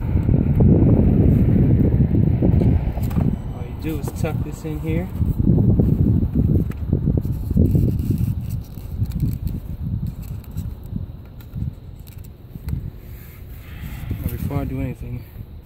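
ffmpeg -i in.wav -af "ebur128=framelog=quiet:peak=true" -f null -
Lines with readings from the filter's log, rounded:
Integrated loudness:
  I:         -20.2 LUFS
  Threshold: -31.1 LUFS
Loudness range:
  LRA:        15.1 LU
  Threshold: -41.8 LUFS
  LRA low:   -32.1 LUFS
  LRA high:  -17.0 LUFS
True peak:
  Peak:       -3.3 dBFS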